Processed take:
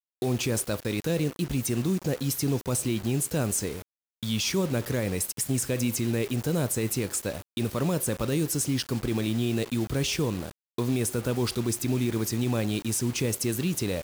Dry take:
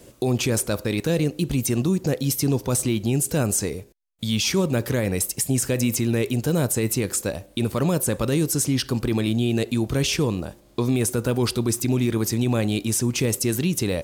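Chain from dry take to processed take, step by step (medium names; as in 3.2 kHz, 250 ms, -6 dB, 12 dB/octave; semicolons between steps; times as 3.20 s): bit crusher 6-bit; trim -5 dB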